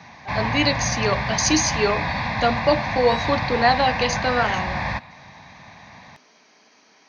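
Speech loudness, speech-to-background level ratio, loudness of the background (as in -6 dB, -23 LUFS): -22.0 LUFS, 3.0 dB, -25.0 LUFS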